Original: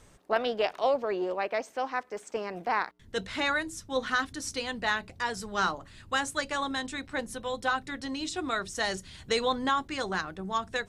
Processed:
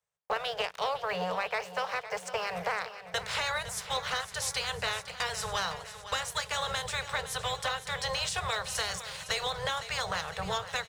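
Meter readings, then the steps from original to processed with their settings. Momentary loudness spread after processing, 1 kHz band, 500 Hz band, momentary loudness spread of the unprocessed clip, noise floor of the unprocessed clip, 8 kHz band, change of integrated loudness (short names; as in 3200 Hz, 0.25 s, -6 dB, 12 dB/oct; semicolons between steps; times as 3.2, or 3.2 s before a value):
3 LU, -2.5 dB, -5.0 dB, 7 LU, -56 dBFS, +4.0 dB, -1.5 dB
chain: spectral limiter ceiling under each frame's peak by 16 dB; Chebyshev band-stop 180–430 Hz, order 4; gate -48 dBFS, range -29 dB; HPF 50 Hz; compressor 6:1, threshold -36 dBFS, peak gain reduction 13.5 dB; sample leveller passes 2; feedback echo 0.509 s, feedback 59%, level -13 dB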